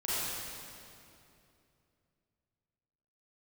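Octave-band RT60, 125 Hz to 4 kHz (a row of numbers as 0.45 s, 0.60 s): 3.5 s, 3.2 s, 2.9 s, 2.5 s, 2.3 s, 2.1 s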